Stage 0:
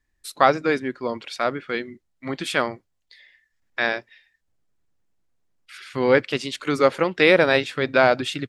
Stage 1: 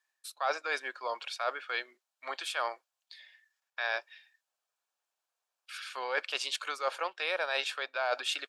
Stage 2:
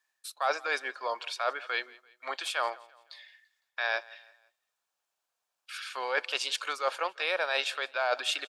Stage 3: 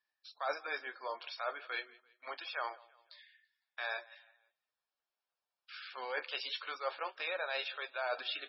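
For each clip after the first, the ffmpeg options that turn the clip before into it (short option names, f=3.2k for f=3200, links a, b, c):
-af "highpass=f=660:w=0.5412,highpass=f=660:w=1.3066,bandreject=f=2k:w=5.4,areverse,acompressor=threshold=-29dB:ratio=6,areverse"
-af "aecho=1:1:169|338|507:0.075|0.0322|0.0139,volume=2.5dB"
-af "flanger=delay=8.6:depth=5.6:regen=-59:speed=0.4:shape=triangular,volume=-3.5dB" -ar 24000 -c:a libmp3lame -b:a 16k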